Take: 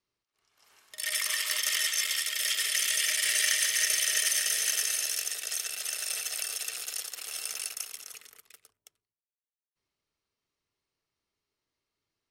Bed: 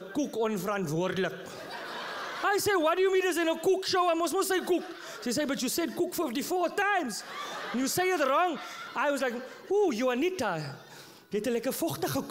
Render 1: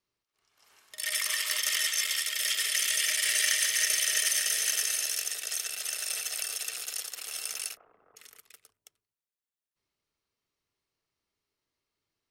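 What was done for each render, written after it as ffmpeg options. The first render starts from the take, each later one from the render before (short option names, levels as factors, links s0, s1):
-filter_complex "[0:a]asplit=3[s0][s1][s2];[s0]afade=t=out:st=7.75:d=0.02[s3];[s1]lowpass=f=1100:w=0.5412,lowpass=f=1100:w=1.3066,afade=t=in:st=7.75:d=0.02,afade=t=out:st=8.16:d=0.02[s4];[s2]afade=t=in:st=8.16:d=0.02[s5];[s3][s4][s5]amix=inputs=3:normalize=0"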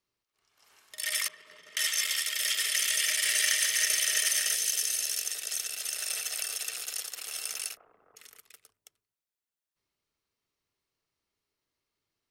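-filter_complex "[0:a]asettb=1/sr,asplit=3[s0][s1][s2];[s0]atrim=end=1.284[s3];[s1]atrim=start=1.28:end=1.77,asetpts=PTS-STARTPTS,afade=t=in:d=0.004:c=qsin,afade=t=out:st=0.486:d=0.004:c=qsin,bandpass=f=200:t=q:w=0.97[s4];[s2]atrim=start=1.766[s5];[s3][s4]acrossfade=d=0.004:c1=hsin:c2=qsin[s6];[s6][s5]acrossfade=d=0.004:c1=qsin:c2=hsin,asettb=1/sr,asplit=3[s7][s8][s9];[s7]atrim=end=4.554[s10];[s8]atrim=start=4.55:end=5.96,asetpts=PTS-STARTPTS,afade=t=in:d=0.004:c=qsin,afade=t=out:st=1.406:d=0.004:c=qsin,acrossover=split=480|3000[s11][s12][s13];[s12]acompressor=threshold=0.00631:ratio=6:attack=3.2:release=140:knee=2.83:detection=peak[s14];[s11][s14][s13]amix=inputs=3:normalize=0[s15];[s9]atrim=start=5.956[s16];[s10][s15]acrossfade=d=0.004:c1=hsin:c2=qsin[s17];[s17][s16]acrossfade=d=0.004:c1=qsin:c2=hsin"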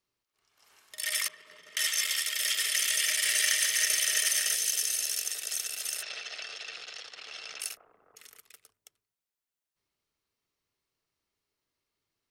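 -filter_complex "[0:a]asplit=3[s0][s1][s2];[s0]afade=t=out:st=6.01:d=0.02[s3];[s1]lowpass=f=4700:w=0.5412,lowpass=f=4700:w=1.3066,afade=t=in:st=6.01:d=0.02,afade=t=out:st=7.6:d=0.02[s4];[s2]afade=t=in:st=7.6:d=0.02[s5];[s3][s4][s5]amix=inputs=3:normalize=0"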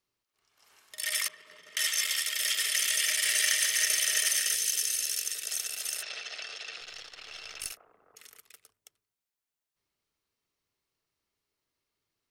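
-filter_complex "[0:a]asettb=1/sr,asplit=3[s0][s1][s2];[s0]atrim=end=4.364[s3];[s1]atrim=start=4.36:end=5.47,asetpts=PTS-STARTPTS,afade=t=in:d=0.004:c=qsin,afade=t=out:st=1.106:d=0.004:c=qsin,equalizer=f=820:t=o:w=0.45:g=-14.5[s4];[s2]atrim=start=5.466[s5];[s3][s4]acrossfade=d=0.004:c1=hsin:c2=qsin[s6];[s6][s5]acrossfade=d=0.004:c1=qsin:c2=hsin,asettb=1/sr,asplit=3[s7][s8][s9];[s7]atrim=end=6.814[s10];[s8]atrim=start=6.81:end=7.72,asetpts=PTS-STARTPTS,afade=t=in:d=0.004:c=qsin,afade=t=out:st=0.906:d=0.004:c=qsin,aeval=exprs='if(lt(val(0),0),0.708*val(0),val(0))':c=same[s11];[s9]atrim=start=7.716[s12];[s10][s11]acrossfade=d=0.004:c1=hsin:c2=qsin[s13];[s13][s12]acrossfade=d=0.004:c1=qsin:c2=hsin"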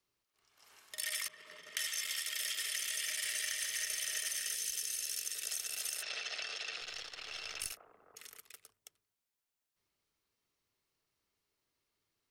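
-filter_complex "[0:a]acrossover=split=150[s0][s1];[s1]acompressor=threshold=0.0178:ratio=6[s2];[s0][s2]amix=inputs=2:normalize=0"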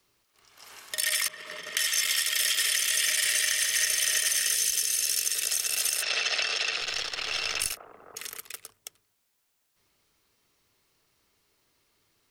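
-filter_complex "[0:a]asplit=2[s0][s1];[s1]alimiter=level_in=1.78:limit=0.0631:level=0:latency=1:release=412,volume=0.562,volume=1.26[s2];[s0][s2]amix=inputs=2:normalize=0,acontrast=77"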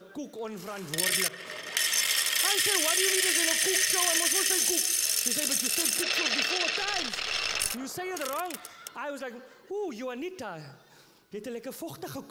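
-filter_complex "[1:a]volume=0.398[s0];[0:a][s0]amix=inputs=2:normalize=0"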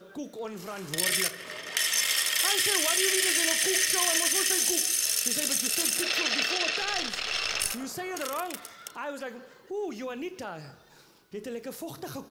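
-filter_complex "[0:a]asplit=2[s0][s1];[s1]adelay=34,volume=0.2[s2];[s0][s2]amix=inputs=2:normalize=0,asplit=5[s3][s4][s5][s6][s7];[s4]adelay=83,afreqshift=-37,volume=0.0708[s8];[s5]adelay=166,afreqshift=-74,volume=0.0403[s9];[s6]adelay=249,afreqshift=-111,volume=0.0229[s10];[s7]adelay=332,afreqshift=-148,volume=0.0132[s11];[s3][s8][s9][s10][s11]amix=inputs=5:normalize=0"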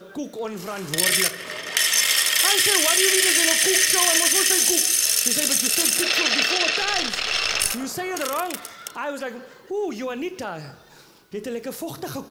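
-af "volume=2.24"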